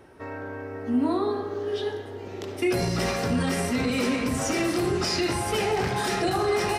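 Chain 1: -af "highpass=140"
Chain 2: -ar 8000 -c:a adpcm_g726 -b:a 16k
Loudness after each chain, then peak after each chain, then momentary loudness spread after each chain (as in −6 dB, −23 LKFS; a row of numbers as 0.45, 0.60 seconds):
−26.5, −26.5 LKFS; −13.5, −13.5 dBFS; 11, 11 LU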